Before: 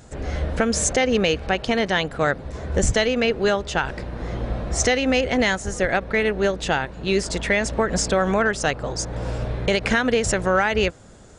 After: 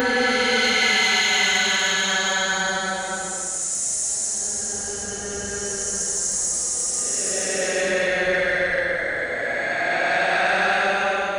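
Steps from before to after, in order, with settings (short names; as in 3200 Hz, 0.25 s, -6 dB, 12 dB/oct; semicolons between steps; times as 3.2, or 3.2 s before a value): spectral repair 4.86–5.5, 600–2000 Hz after; Paulstretch 19×, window 0.10 s, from 5.4; RIAA curve recording; soft clip -10 dBFS, distortion -23 dB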